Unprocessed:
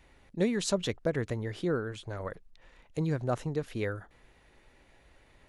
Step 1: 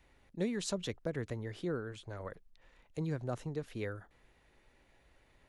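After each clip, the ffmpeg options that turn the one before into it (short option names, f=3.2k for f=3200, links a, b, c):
-filter_complex "[0:a]acrossover=split=390|3000[a][b][c];[b]acompressor=threshold=-32dB:ratio=2.5[d];[a][d][c]amix=inputs=3:normalize=0,volume=-6dB"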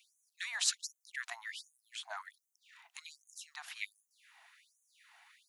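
-af "afftfilt=real='re*gte(b*sr/1024,640*pow(6100/640,0.5+0.5*sin(2*PI*1.3*pts/sr)))':imag='im*gte(b*sr/1024,640*pow(6100/640,0.5+0.5*sin(2*PI*1.3*pts/sr)))':win_size=1024:overlap=0.75,volume=9.5dB"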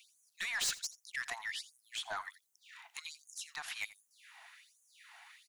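-af "aeval=exprs='(tanh(63.1*val(0)+0.05)-tanh(0.05))/63.1':c=same,aecho=1:1:84:0.119,volume=5.5dB"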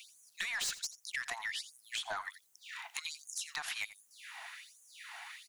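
-af "acompressor=threshold=-46dB:ratio=4,volume=9dB"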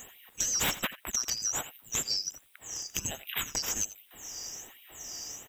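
-af "afftfilt=real='real(if(lt(b,736),b+184*(1-2*mod(floor(b/184),2)),b),0)':imag='imag(if(lt(b,736),b+184*(1-2*mod(floor(b/184),2)),b),0)':win_size=2048:overlap=0.75,volume=7.5dB"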